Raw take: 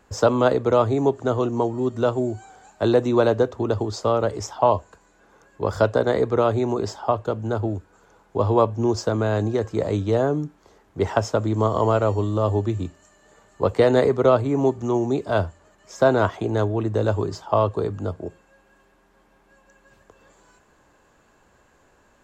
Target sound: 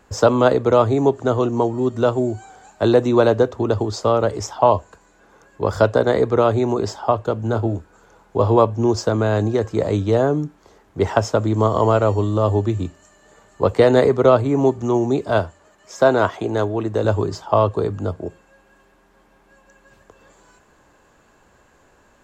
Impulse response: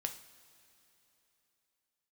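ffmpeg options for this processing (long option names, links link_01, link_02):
-filter_complex "[0:a]asettb=1/sr,asplit=3[link_01][link_02][link_03];[link_01]atrim=end=7.404[link_04];[link_02]atrim=start=7.4:end=8.57,asetpts=PTS-STARTPTS,afade=type=in:duration=0.004:curve=qsin,afade=type=out:start_time=1.166:duration=0.004:curve=qsin,asplit=2[link_05][link_06];[link_06]adelay=26,volume=-10dB[link_07];[link_05][link_07]amix=inputs=2:normalize=0,atrim=end_sample=51597[link_08];[link_03]atrim=start=8.566[link_09];[link_04][link_08]acrossfade=duration=0.004:curve1=hsin:curve2=qsin[link_10];[link_10][link_09]acrossfade=duration=0.004:curve1=qsin:curve2=hsin,asettb=1/sr,asplit=3[link_11][link_12][link_13];[link_11]atrim=end=15.394[link_14];[link_12]atrim=start=15.39:end=17.05,asetpts=PTS-STARTPTS,afade=type=in:duration=0.004:curve=qsin,afade=type=out:start_time=1.656:duration=0.004:curve=qsin,lowshelf=frequency=160:gain=-8.5[link_15];[link_13]atrim=start=17.046[link_16];[link_14][link_15]acrossfade=duration=0.004:curve1=hsin:curve2=qsin[link_17];[link_17][link_16]acrossfade=duration=0.004:curve1=qsin:curve2=hsin,volume=3.5dB"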